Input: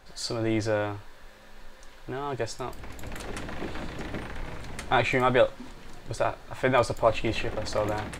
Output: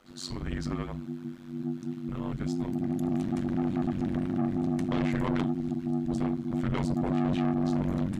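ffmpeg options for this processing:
ffmpeg -i in.wav -af "asubboost=boost=10:cutoff=120,afreqshift=-260,asoftclip=type=tanh:threshold=-20dB,tremolo=f=93:d=1,volume=-1dB" out.wav

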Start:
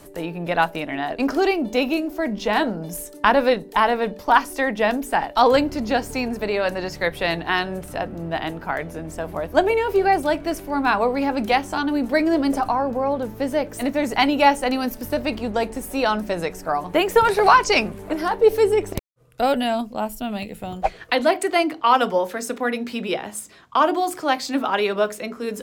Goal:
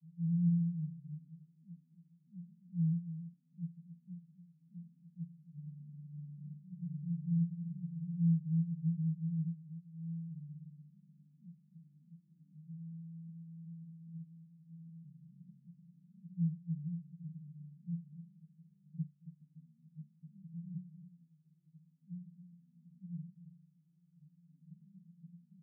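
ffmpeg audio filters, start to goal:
ffmpeg -i in.wav -af "alimiter=limit=-10.5dB:level=0:latency=1:release=316,asuperpass=centerf=160:order=8:qfactor=5.8,aecho=1:1:275:0.251,volume=4dB" out.wav

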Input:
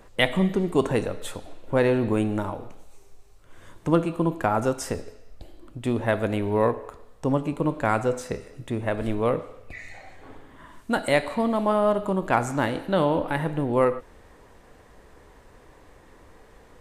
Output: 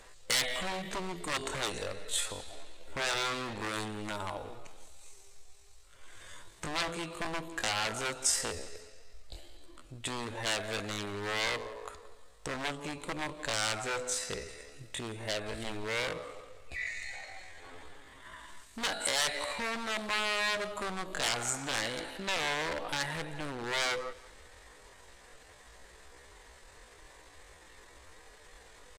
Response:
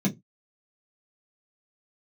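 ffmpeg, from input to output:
-filter_complex "[0:a]atempo=0.58,aeval=exprs='0.0794*(abs(mod(val(0)/0.0794+3,4)-2)-1)':channel_layout=same,acompressor=threshold=-28dB:ratio=6,equalizer=frequency=125:width_type=o:width=1:gain=-6,equalizer=frequency=250:width_type=o:width=1:gain=-7,equalizer=frequency=2000:width_type=o:width=1:gain=5,equalizer=frequency=4000:width_type=o:width=1:gain=8,equalizer=frequency=8000:width_type=o:width=1:gain=11,asplit=2[link_01][link_02];[link_02]aecho=0:1:176|352|528:0.0944|0.0349|0.0129[link_03];[link_01][link_03]amix=inputs=2:normalize=0,volume=-4dB"

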